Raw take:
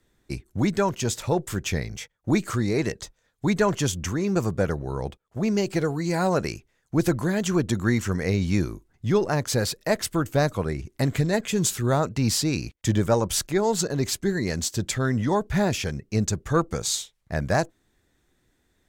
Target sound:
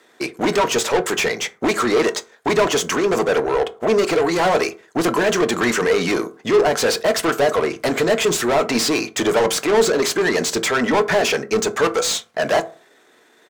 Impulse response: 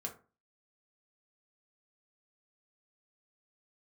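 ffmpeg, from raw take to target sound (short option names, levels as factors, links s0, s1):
-filter_complex "[0:a]highpass=410,tiltshelf=f=730:g=4.5,atempo=1.4,asplit=2[s0][s1];[s1]highpass=f=720:p=1,volume=28.2,asoftclip=type=tanh:threshold=0.299[s2];[s0][s2]amix=inputs=2:normalize=0,lowpass=f=4300:p=1,volume=0.501,asplit=2[s3][s4];[1:a]atrim=start_sample=2205,asetrate=42777,aresample=44100[s5];[s4][s5]afir=irnorm=-1:irlink=0,volume=0.841[s6];[s3][s6]amix=inputs=2:normalize=0,volume=0.708"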